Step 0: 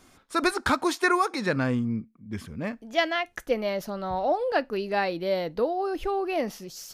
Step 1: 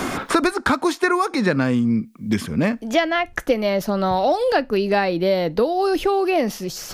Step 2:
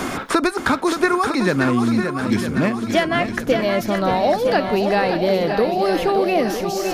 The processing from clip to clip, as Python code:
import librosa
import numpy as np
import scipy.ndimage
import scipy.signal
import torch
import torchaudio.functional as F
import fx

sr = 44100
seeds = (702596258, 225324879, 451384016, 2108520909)

y1 = fx.dynamic_eq(x, sr, hz=230.0, q=0.78, threshold_db=-36.0, ratio=4.0, max_db=3)
y1 = fx.band_squash(y1, sr, depth_pct=100)
y1 = y1 * 10.0 ** (5.0 / 20.0)
y2 = fx.echo_swing(y1, sr, ms=955, ratio=1.5, feedback_pct=51, wet_db=-7.0)